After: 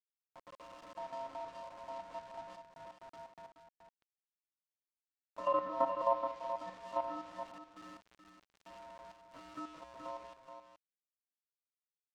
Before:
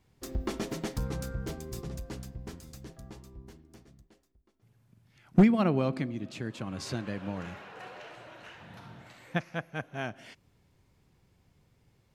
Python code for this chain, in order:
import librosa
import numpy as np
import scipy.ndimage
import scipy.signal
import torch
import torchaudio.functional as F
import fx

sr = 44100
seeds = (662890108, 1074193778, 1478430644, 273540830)

y = fx.fade_in_head(x, sr, length_s=1.38)
y = fx.octave_resonator(y, sr, note='B', decay_s=0.72)
y = fx.level_steps(y, sr, step_db=11)
y = fx.quant_companded(y, sr, bits=6)
y = fx.env_lowpass_down(y, sr, base_hz=2600.0, full_db=-46.0)
y = fx.low_shelf(y, sr, hz=120.0, db=11.5, at=(5.47, 6.15))
y = y + 10.0 ** (-8.0 / 20.0) * np.pad(y, (int(426 * sr / 1000.0), 0))[:len(y)]
y = y * np.sin(2.0 * np.pi * 800.0 * np.arange(len(y)) / sr)
y = fx.peak_eq(y, sr, hz=12000.0, db=-12.5, octaves=0.75)
y = y * librosa.db_to_amplitude(15.5)